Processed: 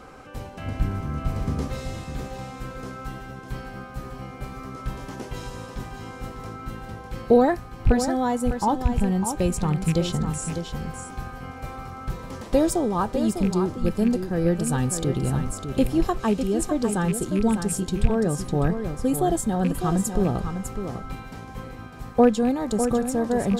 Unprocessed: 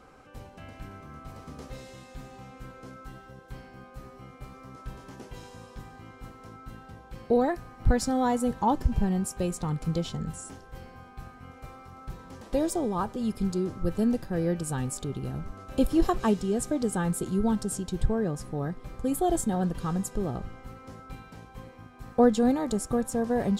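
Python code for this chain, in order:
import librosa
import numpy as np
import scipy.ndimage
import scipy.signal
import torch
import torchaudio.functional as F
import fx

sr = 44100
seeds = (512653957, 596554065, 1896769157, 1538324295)

y = fx.rattle_buzz(x, sr, strikes_db=-24.0, level_db=-30.0)
y = fx.low_shelf(y, sr, hz=250.0, db=11.5, at=(0.65, 1.68))
y = fx.rider(y, sr, range_db=5, speed_s=0.5)
y = y + 10.0 ** (-8.0 / 20.0) * np.pad(y, (int(602 * sr / 1000.0), 0))[:len(y)]
y = y * 10.0 ** (4.0 / 20.0)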